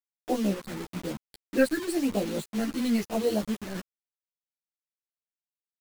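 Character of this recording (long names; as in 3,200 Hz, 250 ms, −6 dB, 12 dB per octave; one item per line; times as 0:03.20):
phaser sweep stages 8, 0.98 Hz, lowest notch 780–2,100 Hz
chopped level 1.6 Hz, depth 60%, duty 85%
a quantiser's noise floor 6 bits, dither none
a shimmering, thickened sound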